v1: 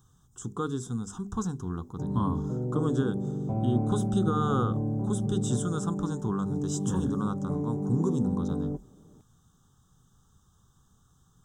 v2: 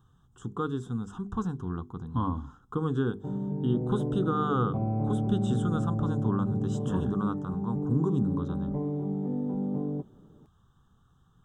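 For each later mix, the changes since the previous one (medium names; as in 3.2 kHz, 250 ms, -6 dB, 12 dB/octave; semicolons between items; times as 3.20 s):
speech: add resonant high shelf 4 kHz -12 dB, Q 1.5; background: entry +1.25 s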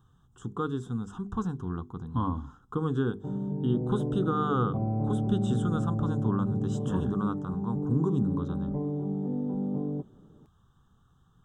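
background: add low-pass 1.4 kHz 6 dB/octave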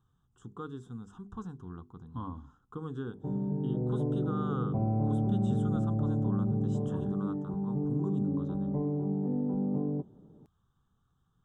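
speech -10.0 dB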